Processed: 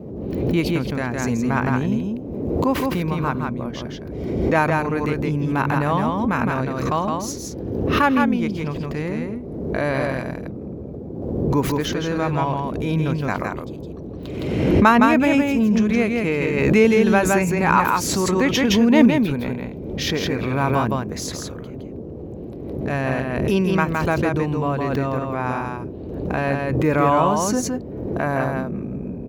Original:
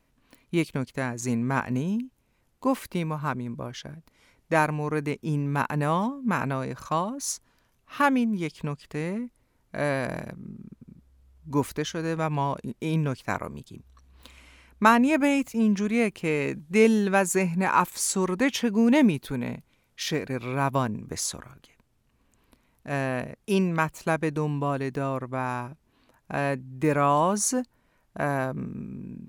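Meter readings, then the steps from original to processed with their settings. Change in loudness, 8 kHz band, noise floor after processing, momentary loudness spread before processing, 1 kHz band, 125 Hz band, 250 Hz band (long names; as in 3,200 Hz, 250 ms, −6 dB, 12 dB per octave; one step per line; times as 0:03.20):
+5.5 dB, +1.0 dB, −33 dBFS, 14 LU, +5.5 dB, +7.0 dB, +6.5 dB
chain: parametric band 9,000 Hz −13 dB 0.65 octaves
noise in a band 49–450 Hz −39 dBFS
single-tap delay 164 ms −3.5 dB
background raised ahead of every attack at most 34 dB per second
level +3.5 dB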